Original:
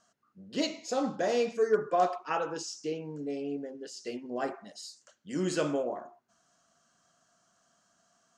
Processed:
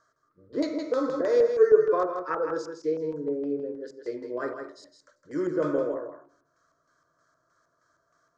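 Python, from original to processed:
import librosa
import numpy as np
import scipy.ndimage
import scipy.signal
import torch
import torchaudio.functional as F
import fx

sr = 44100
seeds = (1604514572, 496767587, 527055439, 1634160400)

y = fx.fixed_phaser(x, sr, hz=760.0, stages=6)
y = fx.room_shoebox(y, sr, seeds[0], volume_m3=900.0, walls='furnished', distance_m=0.48)
y = fx.hpss(y, sr, part='harmonic', gain_db=4)
y = fx.filter_lfo_lowpass(y, sr, shape='square', hz=3.2, low_hz=870.0, high_hz=3600.0, q=0.81)
y = y + 10.0 ** (-7.0 / 20.0) * np.pad(y, (int(161 * sr / 1000.0), 0))[:len(y)]
y = fx.band_squash(y, sr, depth_pct=70, at=(0.52, 1.21))
y = y * 10.0 ** (3.0 / 20.0)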